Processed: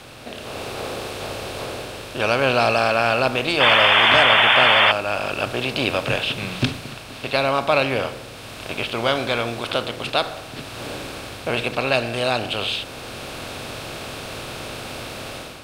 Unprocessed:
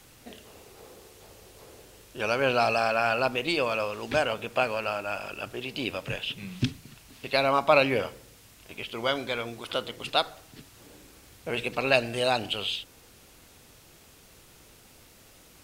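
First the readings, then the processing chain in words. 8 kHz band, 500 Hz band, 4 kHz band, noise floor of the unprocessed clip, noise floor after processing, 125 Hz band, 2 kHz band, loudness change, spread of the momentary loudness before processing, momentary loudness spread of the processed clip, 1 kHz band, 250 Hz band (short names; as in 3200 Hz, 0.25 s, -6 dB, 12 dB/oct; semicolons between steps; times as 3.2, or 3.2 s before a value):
+9.0 dB, +6.0 dB, +12.0 dB, -55 dBFS, -37 dBFS, +8.5 dB, +11.0 dB, +8.5 dB, 12 LU, 20 LU, +8.5 dB, +6.5 dB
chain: per-bin compression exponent 0.6; AGC gain up to 9.5 dB; painted sound noise, 3.6–4.92, 580–3600 Hz -12 dBFS; gain -3 dB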